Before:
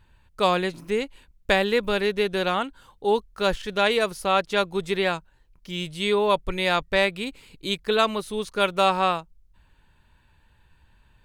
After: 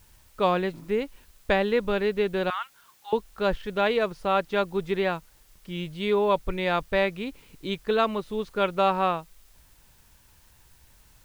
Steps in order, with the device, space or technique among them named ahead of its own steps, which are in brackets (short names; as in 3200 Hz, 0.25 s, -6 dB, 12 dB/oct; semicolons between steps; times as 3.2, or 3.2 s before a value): 2.5–3.13 steep high-pass 1000 Hz 36 dB/oct; cassette deck with a dirty head (tape spacing loss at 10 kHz 23 dB; wow and flutter 23 cents; white noise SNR 33 dB)